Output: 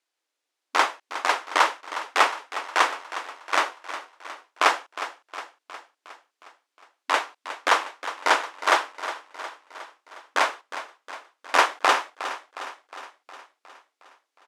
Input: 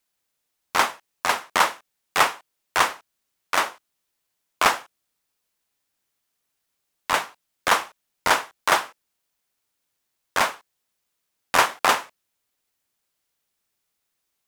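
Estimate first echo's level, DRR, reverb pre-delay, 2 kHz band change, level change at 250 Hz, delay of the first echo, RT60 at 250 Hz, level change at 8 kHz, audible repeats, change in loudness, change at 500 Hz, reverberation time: -12.5 dB, none, none, 0.0 dB, -2.0 dB, 0.361 s, none, -5.0 dB, 5, -1.5 dB, 0.0 dB, none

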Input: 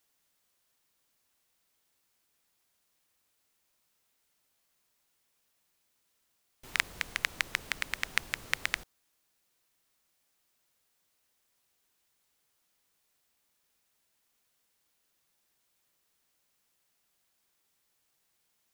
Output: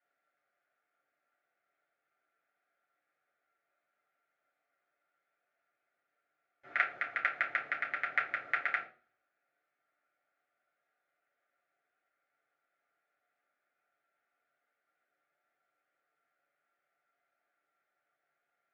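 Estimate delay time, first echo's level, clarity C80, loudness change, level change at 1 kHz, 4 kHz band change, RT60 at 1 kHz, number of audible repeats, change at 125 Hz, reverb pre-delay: none, none, 16.5 dB, -0.5 dB, +5.5 dB, -15.5 dB, 0.35 s, none, under -10 dB, 3 ms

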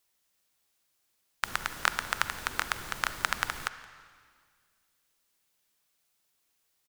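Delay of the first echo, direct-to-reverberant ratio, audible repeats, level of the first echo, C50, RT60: 0.171 s, 11.5 dB, 1, -22.0 dB, 12.0 dB, 1.9 s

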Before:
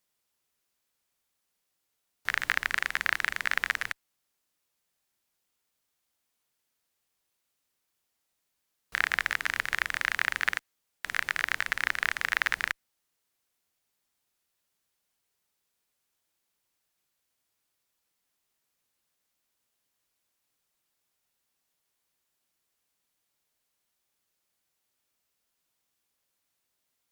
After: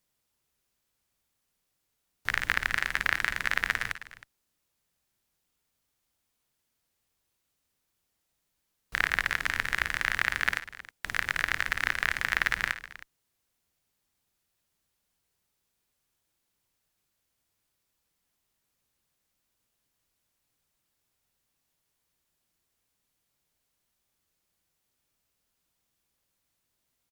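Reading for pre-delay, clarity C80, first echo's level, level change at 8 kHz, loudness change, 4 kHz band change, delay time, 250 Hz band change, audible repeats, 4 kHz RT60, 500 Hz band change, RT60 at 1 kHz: none, none, -15.0 dB, +0.5 dB, +0.5 dB, +0.5 dB, 52 ms, +5.0 dB, 3, none, +2.0 dB, none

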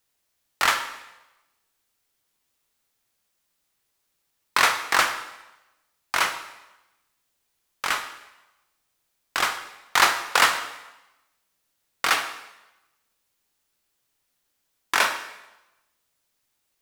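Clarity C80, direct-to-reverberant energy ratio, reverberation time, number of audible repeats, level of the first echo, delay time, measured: 12.0 dB, 7.0 dB, 1.0 s, none, none, none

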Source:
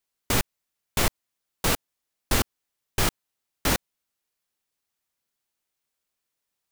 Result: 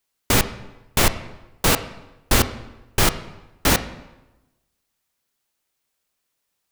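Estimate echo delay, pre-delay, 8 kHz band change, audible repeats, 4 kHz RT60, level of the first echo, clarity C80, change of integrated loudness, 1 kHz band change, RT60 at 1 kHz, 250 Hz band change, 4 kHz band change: none, 19 ms, +6.0 dB, none, 0.80 s, none, 15.5 dB, +6.0 dB, +6.5 dB, 1.0 s, +6.5 dB, +6.0 dB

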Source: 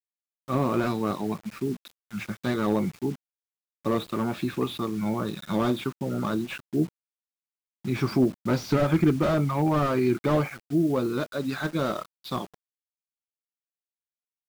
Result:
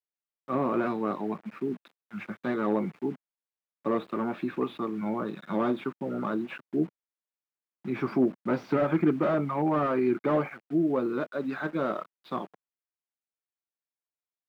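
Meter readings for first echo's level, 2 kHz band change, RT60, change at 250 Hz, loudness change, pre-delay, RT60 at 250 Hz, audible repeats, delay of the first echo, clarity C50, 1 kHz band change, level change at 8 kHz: none, -2.5 dB, none, -2.5 dB, -2.5 dB, none, none, none, none, none, -1.0 dB, under -15 dB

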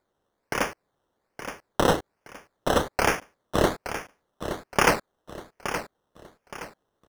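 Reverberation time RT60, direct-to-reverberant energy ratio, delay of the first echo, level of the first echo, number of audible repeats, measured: none, none, 0.87 s, -10.0 dB, 3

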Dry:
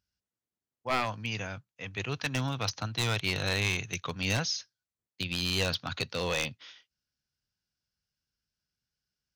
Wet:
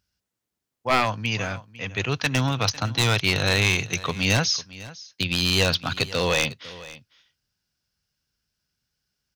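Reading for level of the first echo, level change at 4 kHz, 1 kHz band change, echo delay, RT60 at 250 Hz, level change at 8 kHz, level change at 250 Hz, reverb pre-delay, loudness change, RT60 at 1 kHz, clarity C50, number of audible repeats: -18.5 dB, +8.5 dB, +8.5 dB, 0.501 s, none, +8.5 dB, +8.5 dB, none, +8.5 dB, none, none, 1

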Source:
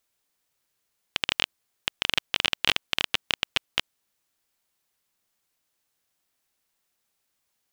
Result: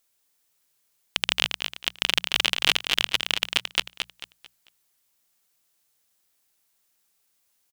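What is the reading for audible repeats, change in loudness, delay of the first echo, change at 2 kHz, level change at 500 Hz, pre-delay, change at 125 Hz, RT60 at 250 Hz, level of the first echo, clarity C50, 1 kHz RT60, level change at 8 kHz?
3, +2.5 dB, 0.222 s, +2.5 dB, +1.0 dB, none, 0.0 dB, none, -6.5 dB, none, none, +6.0 dB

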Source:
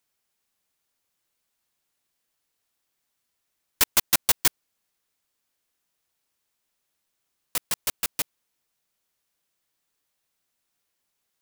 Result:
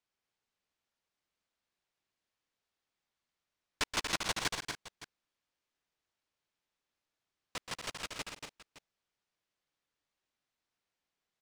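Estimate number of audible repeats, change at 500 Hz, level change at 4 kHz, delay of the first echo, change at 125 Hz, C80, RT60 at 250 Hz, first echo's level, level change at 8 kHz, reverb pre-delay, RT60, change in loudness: 5, -5.0 dB, -8.0 dB, 0.127 s, -4.5 dB, none, none, -8.0 dB, -14.5 dB, none, none, -13.0 dB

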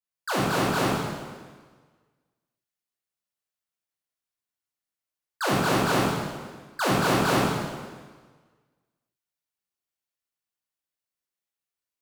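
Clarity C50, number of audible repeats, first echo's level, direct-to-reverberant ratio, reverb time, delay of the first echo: -2.0 dB, none, none, -8.0 dB, 1.5 s, none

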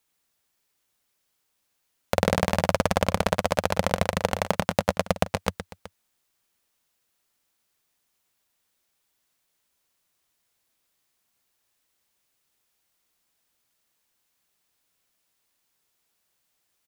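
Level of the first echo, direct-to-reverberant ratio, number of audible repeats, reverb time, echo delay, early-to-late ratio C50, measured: -10.5 dB, none, 2, none, 0.117 s, none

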